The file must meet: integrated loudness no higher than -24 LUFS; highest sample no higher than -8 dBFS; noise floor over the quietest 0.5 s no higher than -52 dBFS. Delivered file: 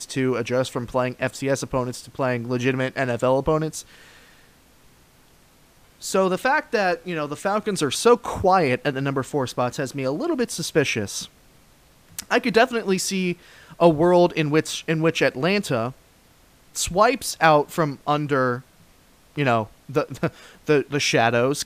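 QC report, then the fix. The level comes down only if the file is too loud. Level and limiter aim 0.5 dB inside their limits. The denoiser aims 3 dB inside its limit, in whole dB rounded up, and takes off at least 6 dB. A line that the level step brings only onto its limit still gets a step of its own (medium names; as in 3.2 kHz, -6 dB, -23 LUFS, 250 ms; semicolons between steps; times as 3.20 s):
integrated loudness -22.0 LUFS: fail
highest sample -3.5 dBFS: fail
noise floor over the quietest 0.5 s -55 dBFS: pass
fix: trim -2.5 dB; peak limiter -8.5 dBFS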